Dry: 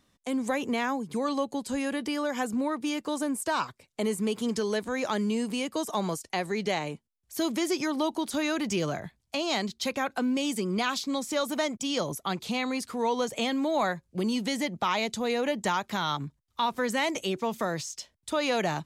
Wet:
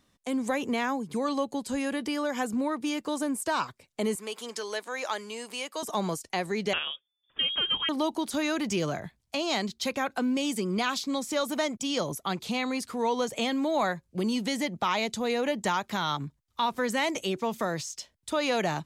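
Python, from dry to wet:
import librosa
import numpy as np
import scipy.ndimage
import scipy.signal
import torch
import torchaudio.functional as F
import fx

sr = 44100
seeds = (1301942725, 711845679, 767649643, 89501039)

y = fx.highpass(x, sr, hz=610.0, slope=12, at=(4.15, 5.83))
y = fx.freq_invert(y, sr, carrier_hz=3500, at=(6.73, 7.89))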